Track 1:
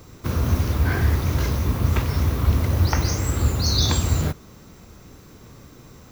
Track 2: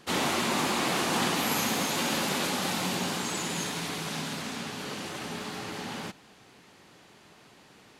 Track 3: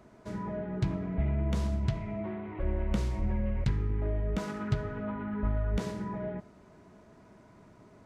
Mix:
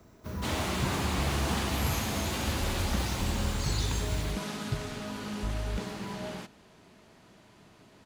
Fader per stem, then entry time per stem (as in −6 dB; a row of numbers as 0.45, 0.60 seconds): −15.5, −5.5, −3.5 decibels; 0.00, 0.35, 0.00 seconds